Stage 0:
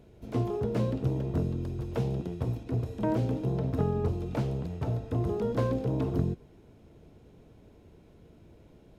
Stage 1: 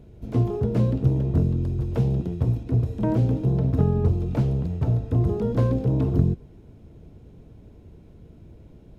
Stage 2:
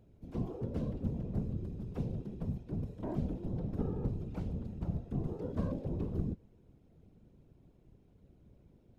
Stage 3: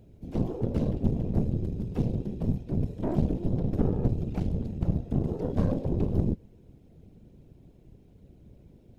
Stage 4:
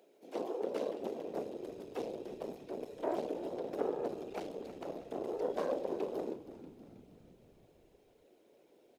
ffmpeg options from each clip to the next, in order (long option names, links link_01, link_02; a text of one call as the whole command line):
ffmpeg -i in.wav -af "lowshelf=frequency=270:gain=11" out.wav
ffmpeg -i in.wav -af "afftfilt=real='hypot(re,im)*cos(2*PI*random(0))':imag='hypot(re,im)*sin(2*PI*random(1))':win_size=512:overlap=0.75,volume=-8.5dB" out.wav
ffmpeg -i in.wav -af "aeval=exprs='0.1*(cos(1*acos(clip(val(0)/0.1,-1,1)))-cos(1*PI/2))+0.0126*(cos(6*acos(clip(val(0)/0.1,-1,1)))-cos(6*PI/2))':channel_layout=same,equalizer=frequency=1200:width_type=o:width=0.99:gain=-6.5,volume=8.5dB" out.wav
ffmpeg -i in.wav -filter_complex "[0:a]highpass=frequency=410:width=0.5412,highpass=frequency=410:width=1.3066,asplit=7[link_01][link_02][link_03][link_04][link_05][link_06][link_07];[link_02]adelay=319,afreqshift=-63,volume=-14dB[link_08];[link_03]adelay=638,afreqshift=-126,volume=-18.7dB[link_09];[link_04]adelay=957,afreqshift=-189,volume=-23.5dB[link_10];[link_05]adelay=1276,afreqshift=-252,volume=-28.2dB[link_11];[link_06]adelay=1595,afreqshift=-315,volume=-32.9dB[link_12];[link_07]adelay=1914,afreqshift=-378,volume=-37.7dB[link_13];[link_01][link_08][link_09][link_10][link_11][link_12][link_13]amix=inputs=7:normalize=0,volume=1dB" out.wav